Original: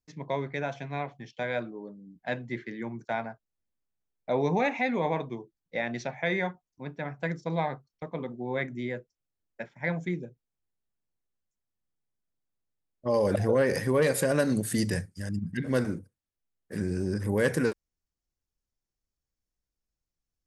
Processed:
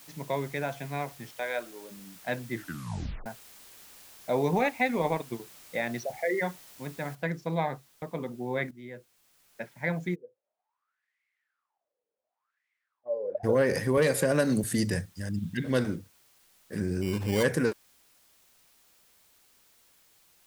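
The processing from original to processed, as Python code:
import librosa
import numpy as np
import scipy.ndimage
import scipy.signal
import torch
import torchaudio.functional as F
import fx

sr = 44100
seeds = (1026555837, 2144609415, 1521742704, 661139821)

y = fx.highpass(x, sr, hz=460.0, slope=12, at=(1.31, 1.9), fade=0.02)
y = fx.transient(y, sr, attack_db=4, sustain_db=-11, at=(4.51, 5.4))
y = fx.envelope_sharpen(y, sr, power=3.0, at=(5.99, 6.41), fade=0.02)
y = fx.noise_floor_step(y, sr, seeds[0], at_s=7.15, before_db=-52, after_db=-63, tilt_db=0.0)
y = fx.wah_lfo(y, sr, hz=fx.line((10.14, 0.37), (13.43, 1.1)), low_hz=470.0, high_hz=2100.0, q=12.0, at=(10.14, 13.43), fade=0.02)
y = fx.band_squash(y, sr, depth_pct=40, at=(13.97, 14.64))
y = fx.peak_eq(y, sr, hz=3400.0, db=7.5, octaves=0.61, at=(15.36, 15.96))
y = fx.sample_hold(y, sr, seeds[1], rate_hz=2600.0, jitter_pct=0, at=(17.01, 17.42), fade=0.02)
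y = fx.edit(y, sr, fx.tape_stop(start_s=2.53, length_s=0.73),
    fx.fade_in_from(start_s=8.71, length_s=0.92, floor_db=-15.5), tone=tone)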